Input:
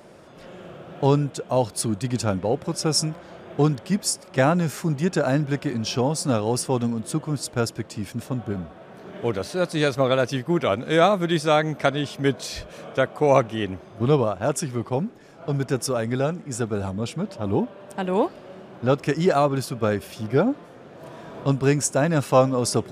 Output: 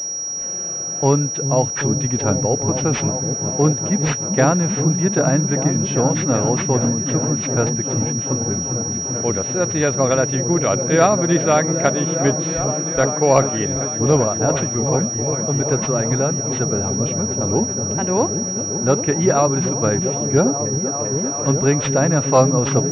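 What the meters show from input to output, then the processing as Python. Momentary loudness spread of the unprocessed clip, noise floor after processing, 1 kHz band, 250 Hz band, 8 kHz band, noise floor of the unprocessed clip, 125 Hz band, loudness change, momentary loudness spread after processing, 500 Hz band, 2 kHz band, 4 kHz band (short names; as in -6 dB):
13 LU, -26 dBFS, +3.5 dB, +5.0 dB, +14.5 dB, -46 dBFS, +6.0 dB, +5.5 dB, 5 LU, +4.0 dB, +3.0 dB, +9.0 dB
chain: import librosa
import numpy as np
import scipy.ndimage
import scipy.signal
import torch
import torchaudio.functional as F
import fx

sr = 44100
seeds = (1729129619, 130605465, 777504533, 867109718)

y = fx.echo_opening(x, sr, ms=393, hz=200, octaves=1, feedback_pct=70, wet_db=-3)
y = fx.pwm(y, sr, carrier_hz=5700.0)
y = y * librosa.db_to_amplitude(3.0)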